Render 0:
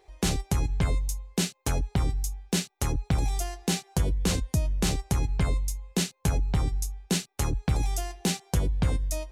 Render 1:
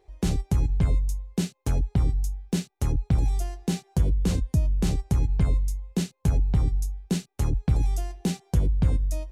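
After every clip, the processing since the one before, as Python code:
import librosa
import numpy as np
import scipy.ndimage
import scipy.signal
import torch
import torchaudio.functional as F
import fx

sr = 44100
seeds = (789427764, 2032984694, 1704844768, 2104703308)

y = fx.low_shelf(x, sr, hz=460.0, db=11.5)
y = y * 10.0 ** (-7.5 / 20.0)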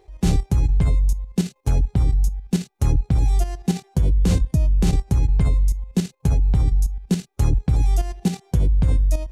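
y = fx.hpss(x, sr, part='harmonic', gain_db=6)
y = fx.level_steps(y, sr, step_db=10)
y = y * 10.0 ** (4.5 / 20.0)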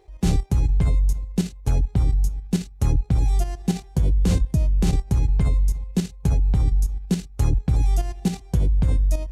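y = fx.echo_feedback(x, sr, ms=290, feedback_pct=58, wet_db=-22.0)
y = y * 10.0 ** (-1.5 / 20.0)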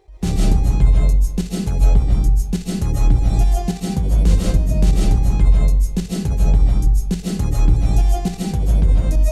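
y = fx.rev_freeverb(x, sr, rt60_s=0.49, hf_ratio=0.4, predelay_ms=110, drr_db=-4.0)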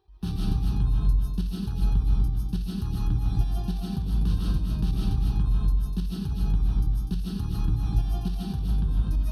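y = scipy.signal.sosfilt(scipy.signal.butter(2, 42.0, 'highpass', fs=sr, output='sos'), x)
y = fx.fixed_phaser(y, sr, hz=2100.0, stages=6)
y = y + 10.0 ** (-5.5 / 20.0) * np.pad(y, (int(247 * sr / 1000.0), 0))[:len(y)]
y = y * 10.0 ** (-8.5 / 20.0)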